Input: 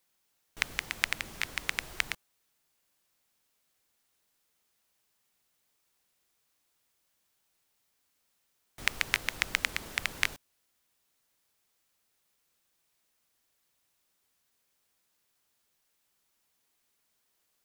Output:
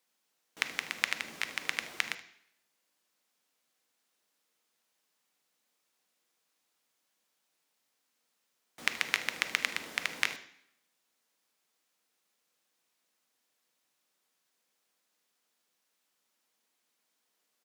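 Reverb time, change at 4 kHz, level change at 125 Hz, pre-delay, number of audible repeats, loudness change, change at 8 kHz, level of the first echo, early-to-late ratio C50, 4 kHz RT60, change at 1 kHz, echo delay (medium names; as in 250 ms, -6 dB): 0.70 s, -1.0 dB, -10.0 dB, 3 ms, 1, -1.0 dB, -2.0 dB, -17.5 dB, 12.0 dB, 0.70 s, -0.5 dB, 76 ms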